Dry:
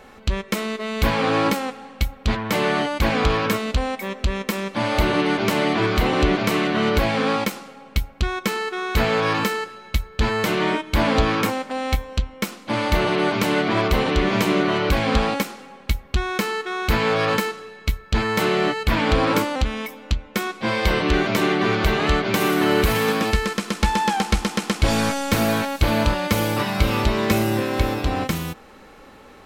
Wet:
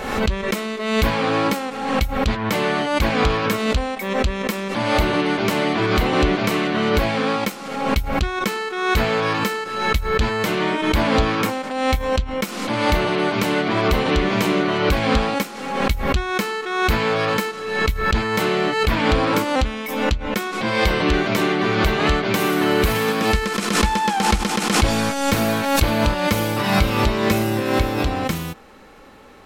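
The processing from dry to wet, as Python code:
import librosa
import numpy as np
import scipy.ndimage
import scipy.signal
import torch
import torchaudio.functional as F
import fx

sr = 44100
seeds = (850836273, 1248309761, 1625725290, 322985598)

y = fx.pre_swell(x, sr, db_per_s=50.0)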